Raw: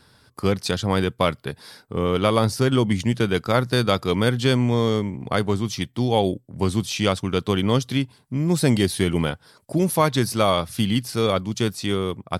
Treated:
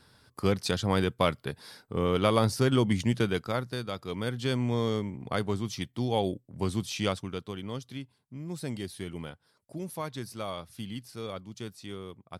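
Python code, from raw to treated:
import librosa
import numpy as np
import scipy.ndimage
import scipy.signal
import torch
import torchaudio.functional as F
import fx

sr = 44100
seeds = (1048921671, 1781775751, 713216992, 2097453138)

y = fx.gain(x, sr, db=fx.line((3.19, -5.0), (3.87, -16.0), (4.71, -8.0), (7.08, -8.0), (7.53, -17.0)))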